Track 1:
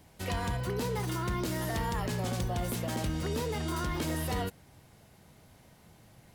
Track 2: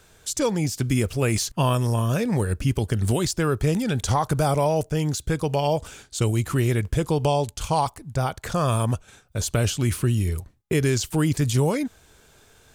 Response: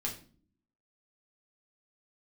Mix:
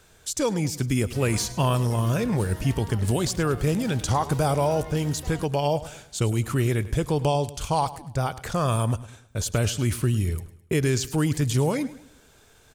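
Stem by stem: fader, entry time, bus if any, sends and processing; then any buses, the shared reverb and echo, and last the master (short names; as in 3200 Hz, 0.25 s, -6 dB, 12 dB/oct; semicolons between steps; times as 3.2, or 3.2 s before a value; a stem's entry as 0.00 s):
-2.0 dB, 0.95 s, no send, no echo send, compressor 2:1, threshold -38 dBFS, peak gain reduction 6.5 dB
-1.5 dB, 0.00 s, no send, echo send -16.5 dB, dry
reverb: off
echo: feedback echo 0.105 s, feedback 39%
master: dry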